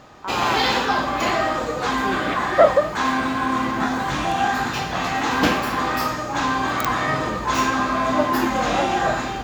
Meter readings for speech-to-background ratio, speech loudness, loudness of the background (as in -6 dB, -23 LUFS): -1.0 dB, -22.5 LUFS, -21.5 LUFS